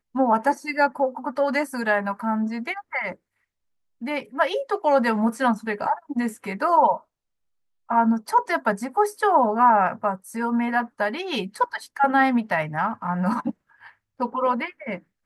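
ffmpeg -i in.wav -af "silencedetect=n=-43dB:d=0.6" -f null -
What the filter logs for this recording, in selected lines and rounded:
silence_start: 3.15
silence_end: 4.01 | silence_duration: 0.87
silence_start: 7.01
silence_end: 7.89 | silence_duration: 0.88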